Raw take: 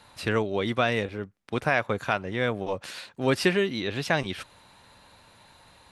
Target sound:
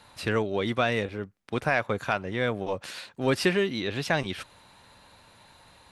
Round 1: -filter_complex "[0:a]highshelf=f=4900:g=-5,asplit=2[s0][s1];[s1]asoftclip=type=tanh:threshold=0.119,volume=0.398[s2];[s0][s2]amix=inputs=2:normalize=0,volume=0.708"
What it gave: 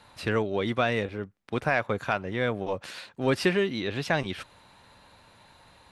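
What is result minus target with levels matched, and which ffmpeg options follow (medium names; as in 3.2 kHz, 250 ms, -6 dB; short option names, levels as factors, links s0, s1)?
8 kHz band -3.0 dB
-filter_complex "[0:a]asplit=2[s0][s1];[s1]asoftclip=type=tanh:threshold=0.119,volume=0.398[s2];[s0][s2]amix=inputs=2:normalize=0,volume=0.708"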